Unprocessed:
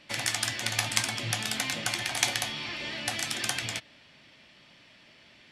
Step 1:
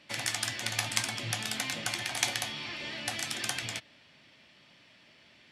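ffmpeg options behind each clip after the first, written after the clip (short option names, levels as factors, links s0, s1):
-af "highpass=56,volume=0.708"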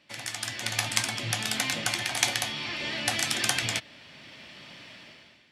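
-af "dynaudnorm=f=150:g=7:m=6.68,volume=0.631"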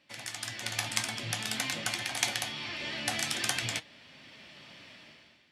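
-af "flanger=delay=3.7:depth=9.9:regen=80:speed=0.48:shape=sinusoidal"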